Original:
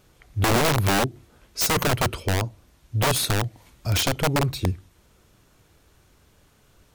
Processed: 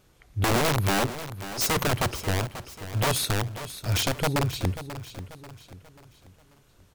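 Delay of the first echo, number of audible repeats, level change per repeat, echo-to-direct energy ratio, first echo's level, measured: 538 ms, 3, −7.5 dB, −11.5 dB, −12.5 dB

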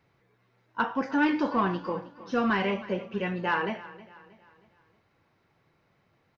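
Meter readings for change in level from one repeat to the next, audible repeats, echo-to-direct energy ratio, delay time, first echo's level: −7.5 dB, 3, −17.0 dB, 316 ms, −18.0 dB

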